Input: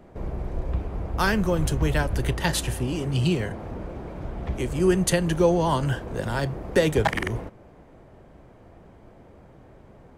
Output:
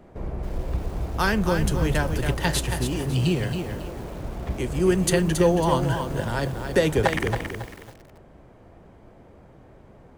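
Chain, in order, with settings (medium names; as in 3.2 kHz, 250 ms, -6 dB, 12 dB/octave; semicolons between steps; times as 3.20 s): bit-crushed delay 275 ms, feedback 35%, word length 7-bit, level -6.5 dB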